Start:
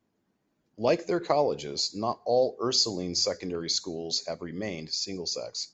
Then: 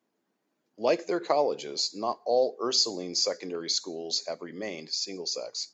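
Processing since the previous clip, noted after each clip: HPF 280 Hz 12 dB/oct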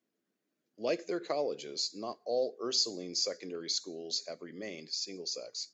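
bell 900 Hz -11 dB 0.67 oct; gain -5 dB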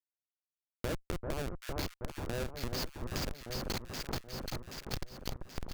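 Schmitt trigger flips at -27.5 dBFS; echo with dull and thin repeats by turns 0.389 s, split 1400 Hz, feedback 71%, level -7 dB; compressor, threshold -45 dBFS, peak gain reduction 10.5 dB; gain +11 dB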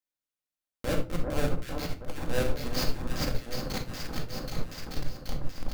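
limiter -30.5 dBFS, peak gain reduction 10.5 dB; shoebox room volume 630 m³, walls furnished, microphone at 2.1 m; upward expander 1.5:1, over -41 dBFS; gain +8 dB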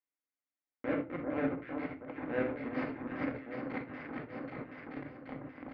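speaker cabinet 180–2100 Hz, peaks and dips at 190 Hz -9 dB, 270 Hz +10 dB, 2100 Hz +8 dB; gain -4 dB

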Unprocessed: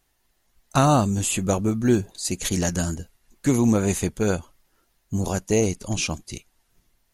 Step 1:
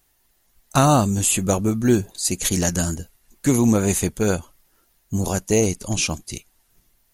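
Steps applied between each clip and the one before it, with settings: high shelf 9600 Hz +10.5 dB; gain +2 dB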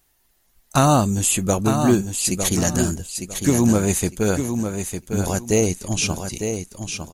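feedback echo 0.904 s, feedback 24%, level -7 dB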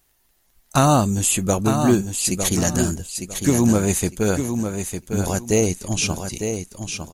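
crackle 21/s -48 dBFS

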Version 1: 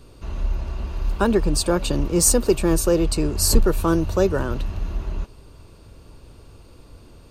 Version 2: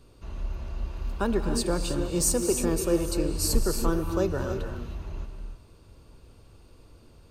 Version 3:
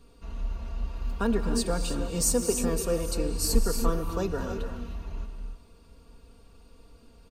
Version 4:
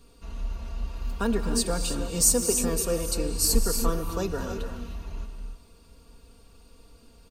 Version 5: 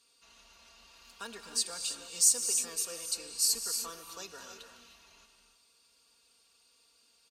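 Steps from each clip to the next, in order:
non-linear reverb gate 0.34 s rising, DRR 5.5 dB; gain -8 dB
comb 4.3 ms, depth 68%; gain -2.5 dB
high shelf 3700 Hz +7 dB
band-pass 5500 Hz, Q 0.65; gain -1.5 dB

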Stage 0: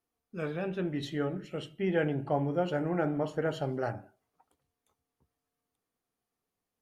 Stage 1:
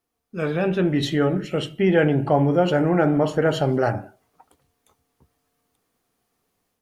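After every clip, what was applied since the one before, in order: AGC gain up to 8 dB; in parallel at 0 dB: limiter -20 dBFS, peak gain reduction 11.5 dB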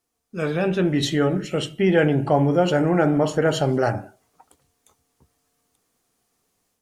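bell 7400 Hz +7.5 dB 1.3 oct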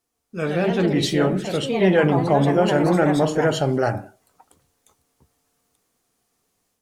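echoes that change speed 0.179 s, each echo +3 st, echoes 2, each echo -6 dB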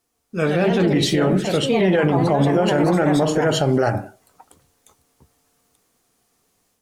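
limiter -14 dBFS, peak gain reduction 8.5 dB; gain +5 dB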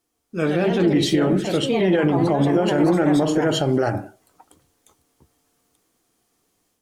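small resonant body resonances 320/3200 Hz, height 7 dB; gain -3 dB

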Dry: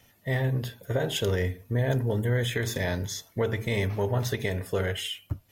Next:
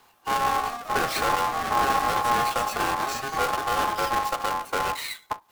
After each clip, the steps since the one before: half-waves squared off; echoes that change speed 0.246 s, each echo +5 st, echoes 3, each echo -6 dB; ring modulator 950 Hz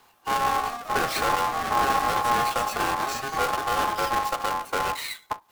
nothing audible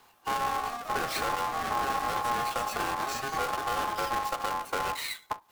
compressor 2.5:1, threshold -27 dBFS, peak gain reduction 6 dB; gain -1.5 dB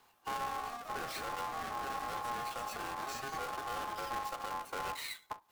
limiter -24 dBFS, peak gain reduction 5 dB; gain -7 dB

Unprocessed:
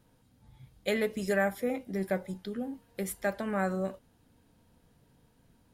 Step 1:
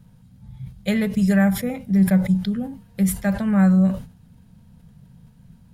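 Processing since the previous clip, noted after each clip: resonant low shelf 240 Hz +9.5 dB, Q 3; sustainer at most 130 dB/s; gain +4.5 dB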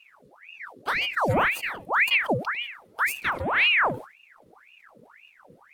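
dynamic EQ 5200 Hz, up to -4 dB, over -48 dBFS, Q 0.78; ring modulator with a swept carrier 1500 Hz, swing 80%, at 1.9 Hz; gain -3 dB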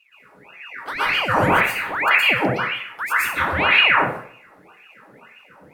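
plate-style reverb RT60 0.54 s, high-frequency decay 0.8×, pre-delay 0.105 s, DRR -9 dB; gain -3.5 dB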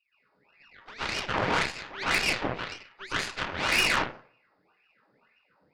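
nonlinear frequency compression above 3500 Hz 4:1; added harmonics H 6 -16 dB, 7 -19 dB, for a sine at -1 dBFS; soft clip -8 dBFS, distortion -13 dB; gain -6 dB

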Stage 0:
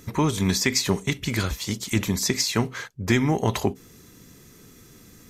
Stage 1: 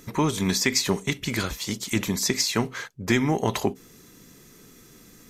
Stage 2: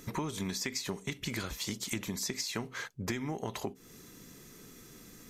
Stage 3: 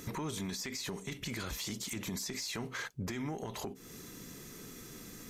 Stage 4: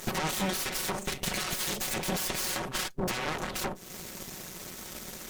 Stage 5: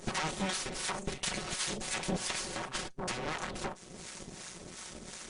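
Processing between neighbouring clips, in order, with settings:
bell 77 Hz -8.5 dB 1.3 oct
compressor 6:1, threshold -31 dBFS, peak gain reduction 14 dB; gain -2 dB
one diode to ground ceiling -21 dBFS; limiter -34 dBFS, peak gain reduction 11.5 dB; gain +4 dB
minimum comb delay 5.4 ms; added harmonics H 3 -20 dB, 7 -14 dB, 8 -11 dB, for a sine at -28.5 dBFS; gain +8.5 dB
harmonic tremolo 2.8 Hz, depth 70%, crossover 730 Hz; MP2 128 kbps 24000 Hz

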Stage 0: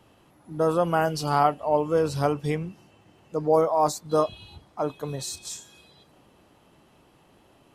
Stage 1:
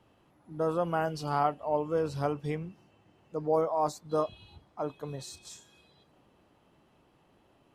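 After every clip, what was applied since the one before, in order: high shelf 5200 Hz -8 dB; gain -6.5 dB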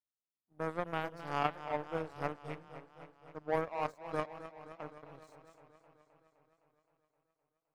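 power-law curve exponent 2; warbling echo 0.259 s, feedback 69%, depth 91 cents, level -13 dB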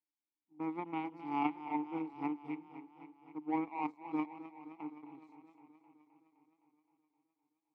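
vowel filter u; gain +11 dB

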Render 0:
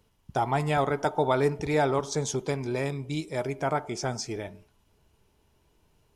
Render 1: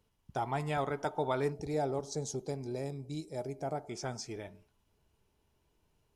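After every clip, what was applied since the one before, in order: spectral gain 1.52–3.89, 880–3800 Hz -10 dB; gain -8 dB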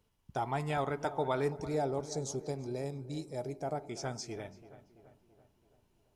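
darkening echo 0.334 s, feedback 56%, low-pass 2200 Hz, level -15 dB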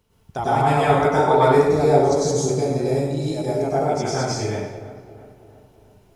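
plate-style reverb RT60 1.1 s, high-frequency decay 0.7×, pre-delay 85 ms, DRR -8.5 dB; gain +7 dB

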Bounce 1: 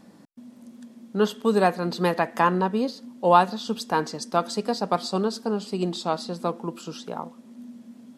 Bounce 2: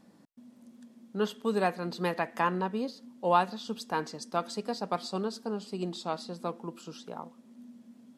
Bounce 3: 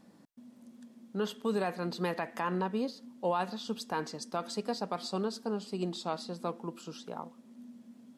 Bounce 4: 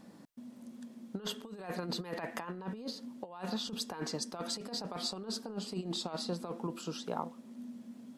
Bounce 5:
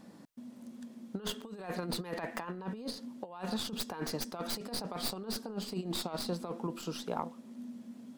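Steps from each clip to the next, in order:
dynamic EQ 2300 Hz, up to +4 dB, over -39 dBFS, Q 1.6; gain -8 dB
limiter -21 dBFS, peak gain reduction 10 dB
negative-ratio compressor -37 dBFS, ratio -0.5
tracing distortion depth 0.11 ms; gain +1 dB

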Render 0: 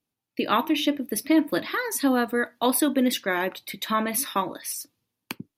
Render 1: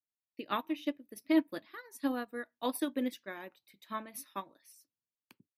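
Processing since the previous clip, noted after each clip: upward expander 2.5:1, over -30 dBFS; gain -5.5 dB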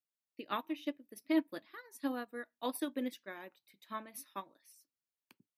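low shelf 99 Hz -7.5 dB; gain -3 dB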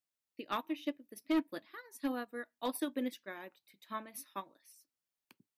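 hard clip -27 dBFS, distortion -15 dB; gain +1 dB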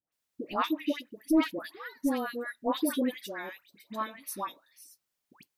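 dispersion highs, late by 0.124 s, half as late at 1200 Hz; gain +7.5 dB

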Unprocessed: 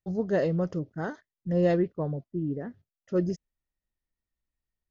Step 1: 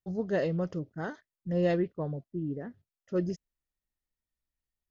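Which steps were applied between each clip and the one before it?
dynamic EQ 2900 Hz, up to +5 dB, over -50 dBFS, Q 0.98; gain -3.5 dB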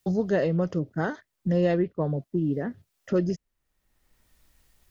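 three-band squash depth 70%; gain +6 dB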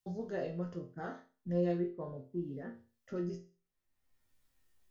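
resonator bank F2 sus4, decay 0.36 s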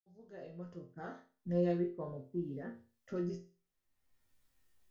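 opening faded in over 1.61 s

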